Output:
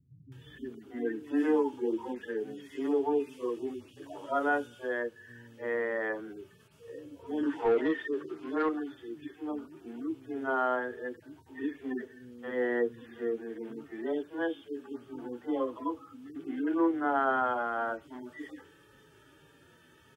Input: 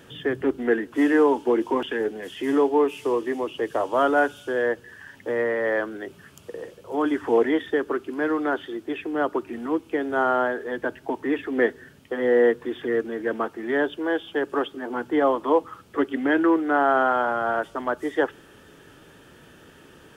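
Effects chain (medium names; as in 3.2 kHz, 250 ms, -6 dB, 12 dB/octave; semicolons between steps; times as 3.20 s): harmonic-percussive separation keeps harmonic; three bands offset in time lows, highs, mids 320/350 ms, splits 180/550 Hz; 7.43–8.69 s: overdrive pedal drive 16 dB, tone 2.4 kHz, clips at -12 dBFS; trim -6 dB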